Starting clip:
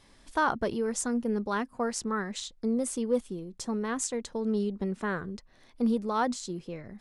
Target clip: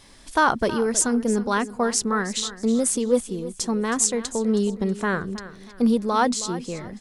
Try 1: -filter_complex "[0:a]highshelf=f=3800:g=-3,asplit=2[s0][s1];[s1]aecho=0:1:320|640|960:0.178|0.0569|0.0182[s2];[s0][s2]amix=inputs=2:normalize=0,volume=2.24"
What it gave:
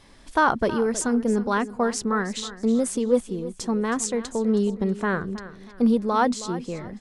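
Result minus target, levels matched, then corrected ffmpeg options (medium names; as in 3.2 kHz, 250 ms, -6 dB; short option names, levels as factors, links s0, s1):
8 kHz band -6.5 dB
-filter_complex "[0:a]highshelf=f=3800:g=6.5,asplit=2[s0][s1];[s1]aecho=0:1:320|640|960:0.178|0.0569|0.0182[s2];[s0][s2]amix=inputs=2:normalize=0,volume=2.24"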